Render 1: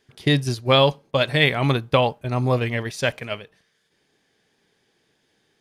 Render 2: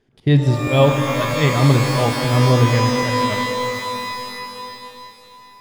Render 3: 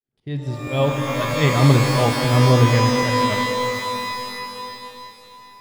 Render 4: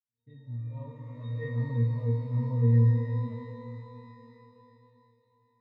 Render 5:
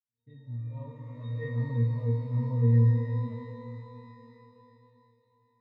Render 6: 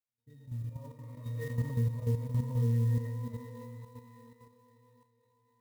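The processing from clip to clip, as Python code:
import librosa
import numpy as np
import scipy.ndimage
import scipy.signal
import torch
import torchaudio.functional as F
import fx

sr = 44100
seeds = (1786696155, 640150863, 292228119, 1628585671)

y1 = fx.tilt_eq(x, sr, slope=-3.0)
y1 = fx.auto_swell(y1, sr, attack_ms=119.0)
y1 = fx.rev_shimmer(y1, sr, seeds[0], rt60_s=3.0, semitones=12, shimmer_db=-2, drr_db=4.5)
y1 = y1 * 10.0 ** (-1.0 / 20.0)
y2 = fx.fade_in_head(y1, sr, length_s=1.62)
y3 = fx.octave_resonator(y2, sr, note='A#', decay_s=0.62)
y4 = y3
y5 = fx.level_steps(y4, sr, step_db=9)
y5 = fx.clock_jitter(y5, sr, seeds[1], jitter_ms=0.033)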